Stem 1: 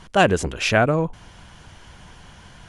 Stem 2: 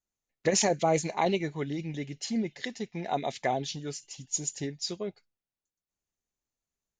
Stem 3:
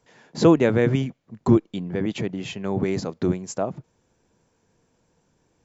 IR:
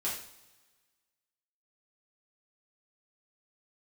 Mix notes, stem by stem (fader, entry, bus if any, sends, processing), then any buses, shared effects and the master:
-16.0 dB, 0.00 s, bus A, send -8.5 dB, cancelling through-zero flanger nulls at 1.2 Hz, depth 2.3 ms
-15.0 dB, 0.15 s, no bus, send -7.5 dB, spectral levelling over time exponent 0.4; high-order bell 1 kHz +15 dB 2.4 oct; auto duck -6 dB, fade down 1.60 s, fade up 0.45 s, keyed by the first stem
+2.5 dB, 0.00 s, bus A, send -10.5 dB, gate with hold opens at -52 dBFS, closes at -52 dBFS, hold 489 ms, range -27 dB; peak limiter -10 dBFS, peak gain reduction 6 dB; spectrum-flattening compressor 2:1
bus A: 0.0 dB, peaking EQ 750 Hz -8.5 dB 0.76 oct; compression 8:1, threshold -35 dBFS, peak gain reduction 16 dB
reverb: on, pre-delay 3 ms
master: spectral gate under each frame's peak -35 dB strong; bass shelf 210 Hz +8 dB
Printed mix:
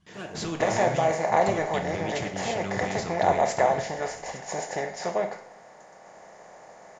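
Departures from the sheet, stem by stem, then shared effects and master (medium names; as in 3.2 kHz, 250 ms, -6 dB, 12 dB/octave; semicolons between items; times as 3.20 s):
stem 1 -16.0 dB -> -23.0 dB; stem 3 +2.5 dB -> -7.5 dB; master: missing spectral gate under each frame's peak -35 dB strong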